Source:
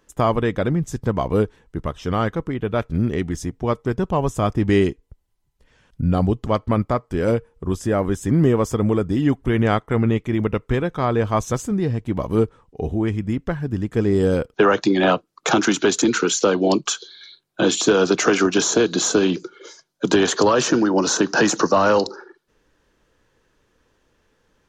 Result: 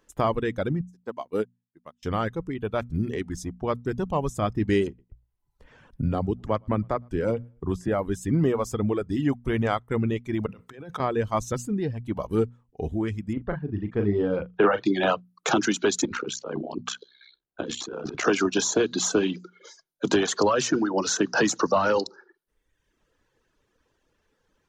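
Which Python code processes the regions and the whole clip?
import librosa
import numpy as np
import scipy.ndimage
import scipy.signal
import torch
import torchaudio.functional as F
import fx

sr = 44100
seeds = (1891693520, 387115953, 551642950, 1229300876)

y = fx.chain(x, sr, fx.highpass(hz=240.0, slope=12),
    fx.upward_expand(threshold_db=-37.0, expansion=2.5), at=(0.81, 2.03))
y = fx.chain(y, sr, fx.high_shelf(hz=3500.0, db=-9.0),
    fx.echo_feedback(ms=111, feedback_pct=22, wet_db=-23.0),
    fx.band_squash(depth_pct=40), at=(4.87, 7.88))
y = fx.chain(y, sr, fx.highpass(hz=110.0, slope=24),
    fx.over_compress(threshold_db=-32.0, ratio=-1.0), at=(10.46, 11.0))
y = fx.chain(y, sr, fx.bessel_lowpass(hz=2400.0, order=4),
    fx.doubler(ms=39.0, db=-6.0), at=(13.33, 14.86))
y = fx.chain(y, sr, fx.lowpass(hz=1900.0, slope=6),
    fx.over_compress(threshold_db=-23.0, ratio=-1.0),
    fx.ring_mod(carrier_hz=32.0), at=(16.05, 18.25))
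y = fx.dereverb_blind(y, sr, rt60_s=1.0)
y = fx.hum_notches(y, sr, base_hz=60, count=4)
y = F.gain(torch.from_numpy(y), -4.5).numpy()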